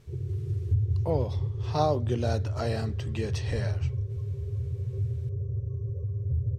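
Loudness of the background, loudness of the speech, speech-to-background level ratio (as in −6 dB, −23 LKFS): −31.5 LKFS, −32.0 LKFS, −0.5 dB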